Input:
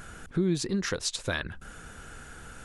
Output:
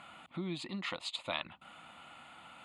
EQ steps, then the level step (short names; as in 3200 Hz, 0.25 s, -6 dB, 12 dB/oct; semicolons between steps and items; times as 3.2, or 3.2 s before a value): BPF 350–4600 Hz; fixed phaser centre 1600 Hz, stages 6; +1.5 dB